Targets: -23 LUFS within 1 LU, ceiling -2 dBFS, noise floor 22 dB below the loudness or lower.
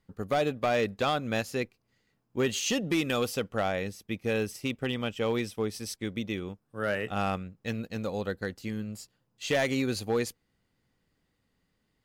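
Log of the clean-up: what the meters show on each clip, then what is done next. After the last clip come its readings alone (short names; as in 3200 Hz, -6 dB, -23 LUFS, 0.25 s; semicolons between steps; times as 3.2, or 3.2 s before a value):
clipped 0.6%; flat tops at -20.5 dBFS; loudness -31.0 LUFS; peak -20.5 dBFS; loudness target -23.0 LUFS
-> clip repair -20.5 dBFS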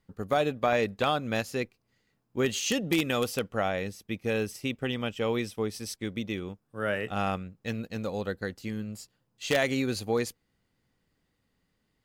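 clipped 0.0%; loudness -30.5 LUFS; peak -11.5 dBFS; loudness target -23.0 LUFS
-> gain +7.5 dB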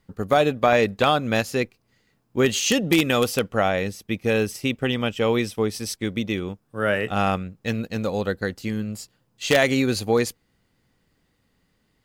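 loudness -23.0 LUFS; peak -4.0 dBFS; noise floor -69 dBFS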